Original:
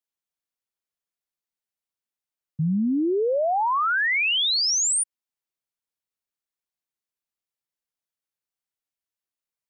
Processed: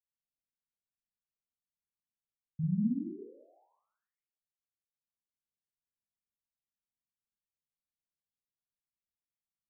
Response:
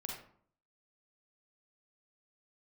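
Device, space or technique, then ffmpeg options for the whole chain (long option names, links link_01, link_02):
club heard from the street: -filter_complex "[0:a]alimiter=level_in=1dB:limit=-24dB:level=0:latency=1,volume=-1dB,lowpass=frequency=230:width=0.5412,lowpass=frequency=230:width=1.3066[link_01];[1:a]atrim=start_sample=2205[link_02];[link_01][link_02]afir=irnorm=-1:irlink=0"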